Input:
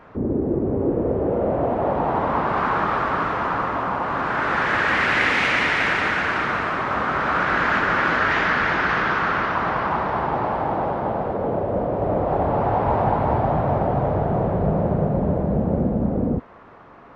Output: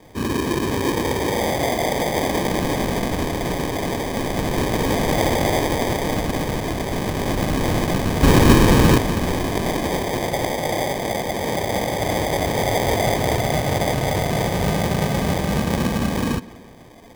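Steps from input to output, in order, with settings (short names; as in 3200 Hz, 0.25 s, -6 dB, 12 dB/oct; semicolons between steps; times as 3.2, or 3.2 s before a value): 8.23–8.98 band shelf 1200 Hz +10 dB 1.2 oct; sample-and-hold 32×; darkening echo 0.17 s, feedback 54%, low-pass 4400 Hz, level -20 dB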